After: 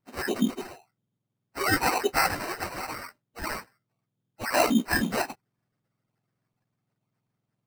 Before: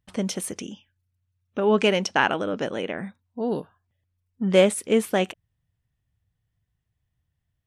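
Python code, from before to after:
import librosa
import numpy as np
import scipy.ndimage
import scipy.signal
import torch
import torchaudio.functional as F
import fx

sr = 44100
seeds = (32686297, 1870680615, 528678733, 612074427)

y = fx.octave_mirror(x, sr, pivot_hz=1500.0)
y = fx.sample_hold(y, sr, seeds[0], rate_hz=3400.0, jitter_pct=0)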